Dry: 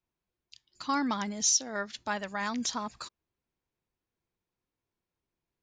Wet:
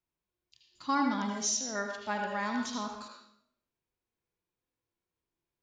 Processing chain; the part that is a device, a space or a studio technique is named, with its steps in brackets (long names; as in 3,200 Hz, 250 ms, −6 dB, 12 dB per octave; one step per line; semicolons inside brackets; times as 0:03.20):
filtered reverb send (on a send at −3 dB: high-pass filter 320 Hz 12 dB per octave + low-pass filter 4,600 Hz 12 dB per octave + convolution reverb RT60 0.70 s, pre-delay 71 ms)
on the sum: harmonic and percussive parts rebalanced percussive −11 dB